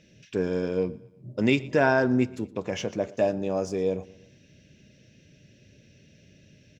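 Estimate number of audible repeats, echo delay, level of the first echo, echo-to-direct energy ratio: 3, 118 ms, −22.0 dB, −21.0 dB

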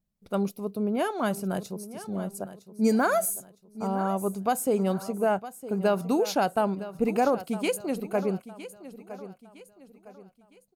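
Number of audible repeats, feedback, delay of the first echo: 3, 38%, 960 ms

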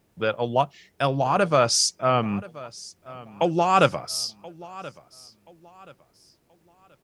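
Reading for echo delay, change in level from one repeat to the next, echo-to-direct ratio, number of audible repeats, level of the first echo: 1,029 ms, −10.0 dB, −19.0 dB, 2, −19.5 dB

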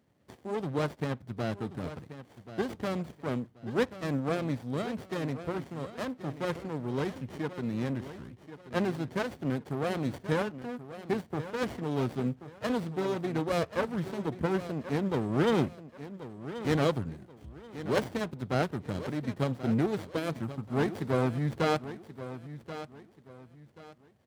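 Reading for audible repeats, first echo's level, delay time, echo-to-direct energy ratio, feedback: 3, −13.0 dB, 1,082 ms, −12.5 dB, 30%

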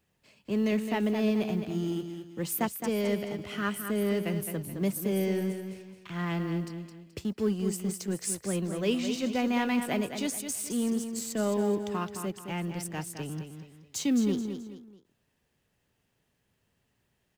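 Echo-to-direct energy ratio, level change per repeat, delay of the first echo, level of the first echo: −7.5 dB, −9.0 dB, 214 ms, −8.0 dB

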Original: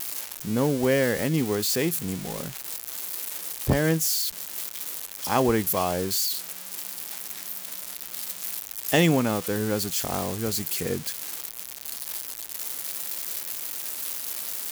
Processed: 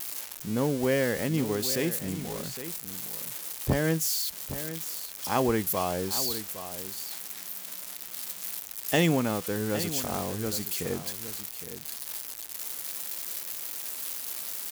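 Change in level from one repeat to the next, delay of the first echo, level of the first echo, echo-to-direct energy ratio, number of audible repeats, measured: repeats not evenly spaced, 812 ms, −12.0 dB, −12.0 dB, 1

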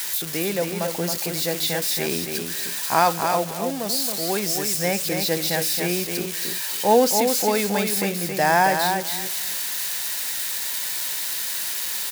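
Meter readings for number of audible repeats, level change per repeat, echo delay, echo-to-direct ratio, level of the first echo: 2, −15.0 dB, 273 ms, −5.5 dB, −5.5 dB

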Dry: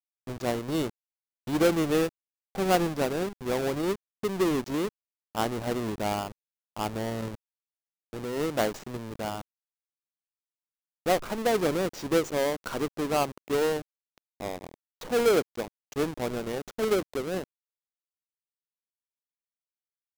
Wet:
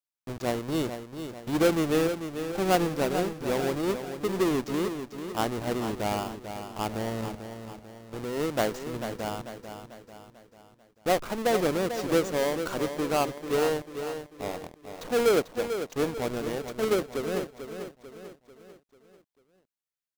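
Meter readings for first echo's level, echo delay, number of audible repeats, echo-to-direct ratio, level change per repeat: −9.0 dB, 443 ms, 4, −8.0 dB, −6.5 dB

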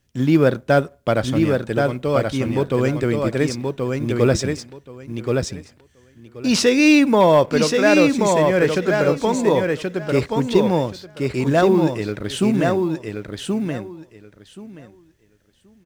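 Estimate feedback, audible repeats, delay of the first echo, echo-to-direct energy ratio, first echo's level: 17%, 3, 1,078 ms, −4.0 dB, −4.0 dB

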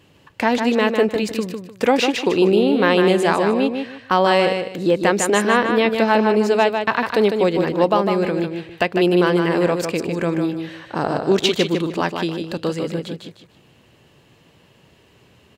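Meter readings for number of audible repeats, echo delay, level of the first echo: 3, 152 ms, −6.0 dB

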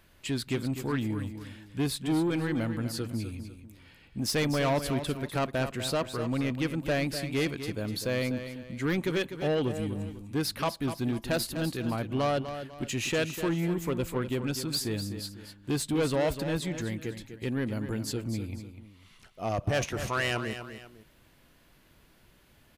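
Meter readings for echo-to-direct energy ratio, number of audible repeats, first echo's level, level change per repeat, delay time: −9.5 dB, 2, −10.0 dB, −9.0 dB, 249 ms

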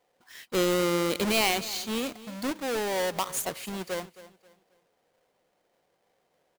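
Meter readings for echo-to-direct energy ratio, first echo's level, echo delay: −16.5 dB, −17.0 dB, 267 ms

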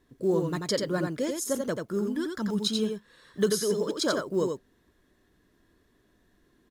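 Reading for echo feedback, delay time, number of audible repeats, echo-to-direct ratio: repeats not evenly spaced, 88 ms, 1, −4.5 dB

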